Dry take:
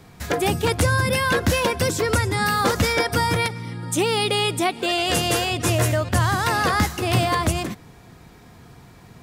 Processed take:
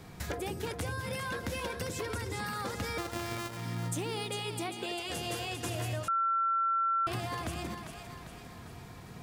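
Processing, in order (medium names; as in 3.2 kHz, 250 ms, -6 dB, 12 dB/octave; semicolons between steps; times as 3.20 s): 2.98–3.57 s: sorted samples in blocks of 128 samples; compression 6:1, threshold -33 dBFS, peak gain reduction 16.5 dB; two-band feedback delay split 560 Hz, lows 85 ms, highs 399 ms, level -7 dB; 6.08–7.07 s: bleep 1.35 kHz -23.5 dBFS; trim -2.5 dB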